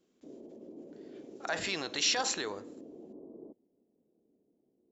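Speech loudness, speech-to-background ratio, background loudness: -31.5 LUFS, 18.5 dB, -50.0 LUFS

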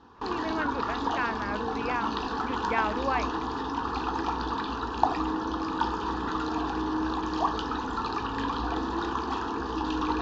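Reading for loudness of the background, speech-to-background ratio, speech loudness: -30.5 LUFS, -3.0 dB, -33.5 LUFS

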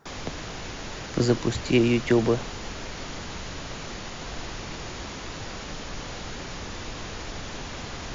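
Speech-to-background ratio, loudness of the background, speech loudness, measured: 12.0 dB, -36.0 LUFS, -24.0 LUFS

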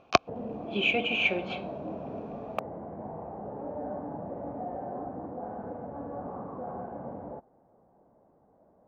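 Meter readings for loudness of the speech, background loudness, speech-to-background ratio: -27.5 LUFS, -39.0 LUFS, 11.5 dB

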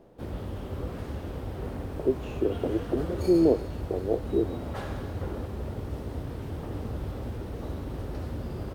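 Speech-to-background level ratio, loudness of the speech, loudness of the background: 8.0 dB, -28.0 LUFS, -36.0 LUFS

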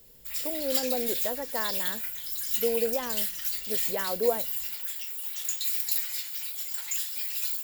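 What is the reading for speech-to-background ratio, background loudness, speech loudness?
-4.0 dB, -28.5 LUFS, -32.5 LUFS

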